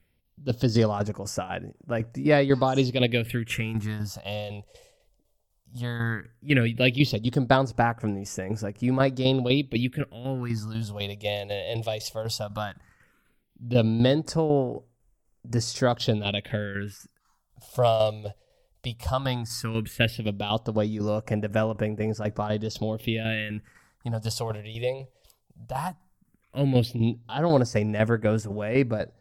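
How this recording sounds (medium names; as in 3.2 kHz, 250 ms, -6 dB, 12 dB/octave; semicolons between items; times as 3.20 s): tremolo saw down 4 Hz, depth 60%; phasing stages 4, 0.15 Hz, lowest notch 240–3900 Hz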